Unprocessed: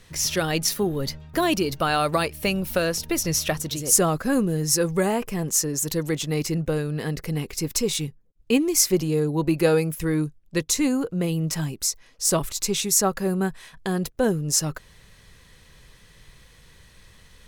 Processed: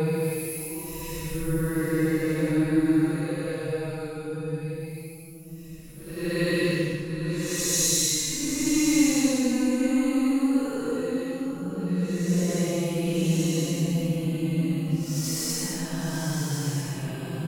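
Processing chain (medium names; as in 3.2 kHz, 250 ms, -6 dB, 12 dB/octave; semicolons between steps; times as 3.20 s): multi-tap echo 57/93/127/490/598 ms -16.5/-9/-9/-15/-14 dB; Paulstretch 9.4×, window 0.10 s, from 9.88 s; trim -2.5 dB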